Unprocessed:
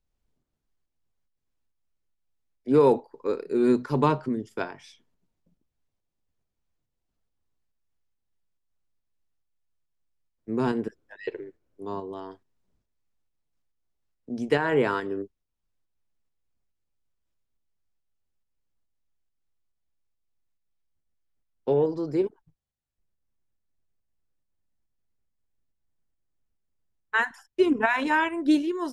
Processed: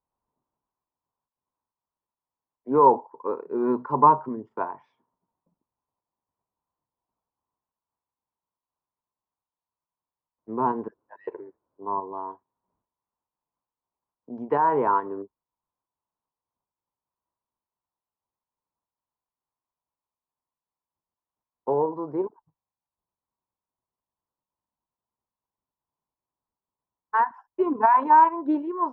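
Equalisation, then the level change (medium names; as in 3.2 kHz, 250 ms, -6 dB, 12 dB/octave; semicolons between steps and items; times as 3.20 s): high-pass 180 Hz 6 dB/octave; resonant low-pass 990 Hz, resonance Q 6.4; -3.0 dB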